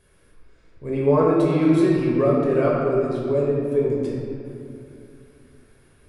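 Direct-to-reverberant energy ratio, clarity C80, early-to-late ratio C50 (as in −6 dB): −5.0 dB, 1.0 dB, −1.0 dB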